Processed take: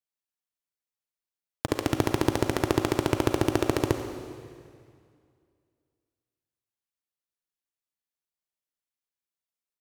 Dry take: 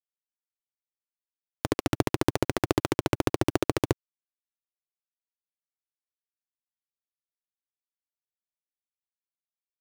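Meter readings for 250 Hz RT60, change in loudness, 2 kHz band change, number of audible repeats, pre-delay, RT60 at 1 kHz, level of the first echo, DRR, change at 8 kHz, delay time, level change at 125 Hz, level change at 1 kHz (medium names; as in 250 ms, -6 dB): 2.3 s, +1.5 dB, +1.0 dB, 1, 34 ms, 2.2 s, -16.5 dB, 6.0 dB, +1.0 dB, 90 ms, +1.0 dB, +1.0 dB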